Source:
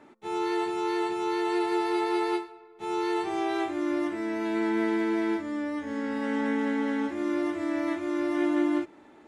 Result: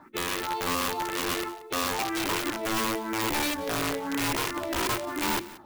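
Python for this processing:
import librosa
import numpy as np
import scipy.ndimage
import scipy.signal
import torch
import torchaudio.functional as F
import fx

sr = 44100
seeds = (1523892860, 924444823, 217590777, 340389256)

p1 = fx.stretch_vocoder(x, sr, factor=0.61)
p2 = scipy.signal.sosfilt(scipy.signal.butter(4, 4500.0, 'lowpass', fs=sr, output='sos'), p1)
p3 = fx.over_compress(p2, sr, threshold_db=-32.0, ratio=-0.5)
p4 = p2 + F.gain(torch.from_numpy(p3), 0.5).numpy()
p5 = fx.phaser_stages(p4, sr, stages=4, low_hz=160.0, high_hz=1100.0, hz=0.98, feedback_pct=20)
p6 = fx.mod_noise(p5, sr, seeds[0], snr_db=25)
p7 = (np.mod(10.0 ** (23.0 / 20.0) * p6 + 1.0, 2.0) - 1.0) / 10.0 ** (23.0 / 20.0)
p8 = fx.hum_notches(p7, sr, base_hz=50, count=7)
y = p8 + fx.echo_single(p8, sr, ms=180, db=-18.0, dry=0)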